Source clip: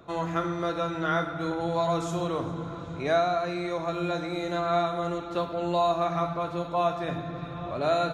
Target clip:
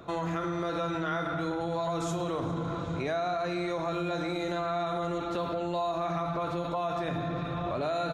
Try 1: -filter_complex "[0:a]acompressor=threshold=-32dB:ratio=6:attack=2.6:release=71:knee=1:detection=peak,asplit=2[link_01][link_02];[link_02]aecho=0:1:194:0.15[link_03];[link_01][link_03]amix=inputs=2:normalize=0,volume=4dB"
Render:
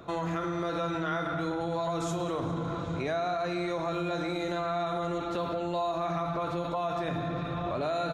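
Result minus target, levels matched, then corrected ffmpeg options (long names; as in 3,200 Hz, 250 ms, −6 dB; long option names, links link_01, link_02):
echo-to-direct +6 dB
-filter_complex "[0:a]acompressor=threshold=-32dB:ratio=6:attack=2.6:release=71:knee=1:detection=peak,asplit=2[link_01][link_02];[link_02]aecho=0:1:194:0.075[link_03];[link_01][link_03]amix=inputs=2:normalize=0,volume=4dB"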